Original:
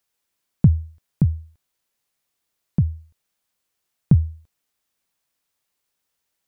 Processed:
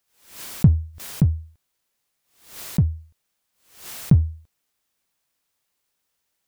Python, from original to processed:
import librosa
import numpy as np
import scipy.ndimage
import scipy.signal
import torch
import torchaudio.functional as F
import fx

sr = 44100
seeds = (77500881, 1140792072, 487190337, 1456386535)

p1 = np.clip(x, -10.0 ** (-20.5 / 20.0), 10.0 ** (-20.5 / 20.0))
p2 = x + (p1 * librosa.db_to_amplitude(-9.5))
p3 = fx.pre_swell(p2, sr, db_per_s=110.0)
y = p3 * librosa.db_to_amplitude(-1.0)